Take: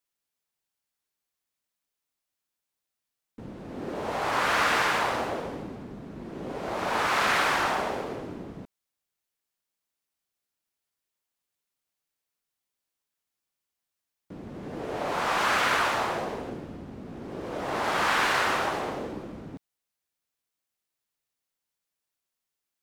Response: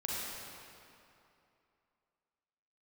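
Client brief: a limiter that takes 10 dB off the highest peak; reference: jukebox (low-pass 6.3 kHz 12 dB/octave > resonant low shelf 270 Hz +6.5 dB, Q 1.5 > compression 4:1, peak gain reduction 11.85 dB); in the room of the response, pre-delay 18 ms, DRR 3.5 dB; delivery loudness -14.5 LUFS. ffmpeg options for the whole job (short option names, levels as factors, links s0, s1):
-filter_complex "[0:a]alimiter=limit=0.075:level=0:latency=1,asplit=2[s0][s1];[1:a]atrim=start_sample=2205,adelay=18[s2];[s1][s2]afir=irnorm=-1:irlink=0,volume=0.398[s3];[s0][s3]amix=inputs=2:normalize=0,lowpass=6300,lowshelf=f=270:t=q:w=1.5:g=6.5,acompressor=threshold=0.01:ratio=4,volume=23.7"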